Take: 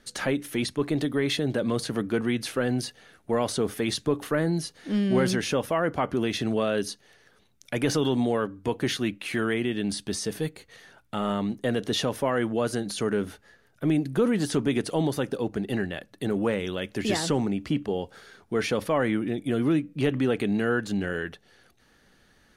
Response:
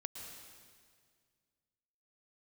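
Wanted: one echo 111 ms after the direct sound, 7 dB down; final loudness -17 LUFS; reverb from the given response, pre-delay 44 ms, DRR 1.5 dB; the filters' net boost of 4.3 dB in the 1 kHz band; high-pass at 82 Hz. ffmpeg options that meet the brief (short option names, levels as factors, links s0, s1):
-filter_complex "[0:a]highpass=82,equalizer=f=1000:t=o:g=5.5,aecho=1:1:111:0.447,asplit=2[s0][s1];[1:a]atrim=start_sample=2205,adelay=44[s2];[s1][s2]afir=irnorm=-1:irlink=0,volume=1.06[s3];[s0][s3]amix=inputs=2:normalize=0,volume=2.11"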